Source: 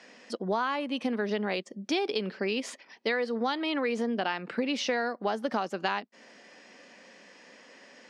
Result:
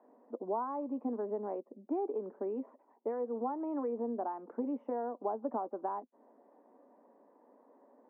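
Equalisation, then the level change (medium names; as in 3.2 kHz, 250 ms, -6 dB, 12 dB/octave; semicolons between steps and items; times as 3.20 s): elliptic band-pass 250–990 Hz, stop band 60 dB; band-stop 520 Hz, Q 14; -4.0 dB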